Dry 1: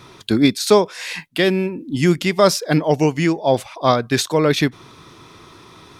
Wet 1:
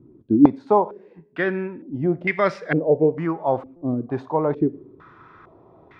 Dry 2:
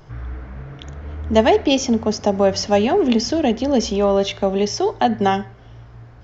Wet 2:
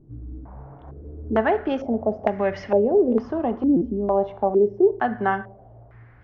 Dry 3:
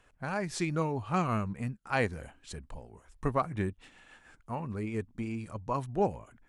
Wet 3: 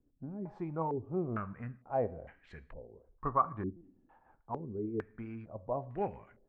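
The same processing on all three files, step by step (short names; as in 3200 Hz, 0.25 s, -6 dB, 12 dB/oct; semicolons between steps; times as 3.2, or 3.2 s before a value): two-slope reverb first 0.57 s, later 1.6 s, from -24 dB, DRR 14 dB; stuck buffer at 3.76, samples 256, times 8; stepped low-pass 2.2 Hz 290–2000 Hz; gain -8 dB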